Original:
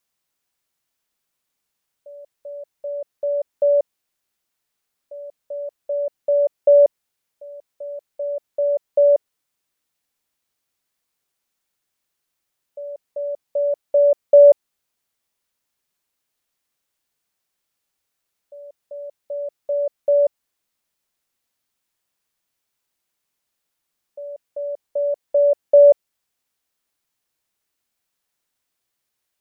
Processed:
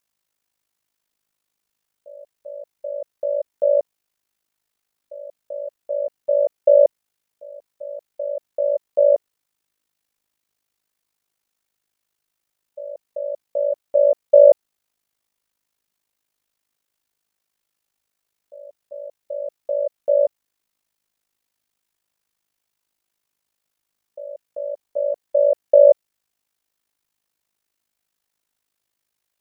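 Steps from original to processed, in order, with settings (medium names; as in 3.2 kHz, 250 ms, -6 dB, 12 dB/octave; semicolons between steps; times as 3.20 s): AM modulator 52 Hz, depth 70%; trim +3 dB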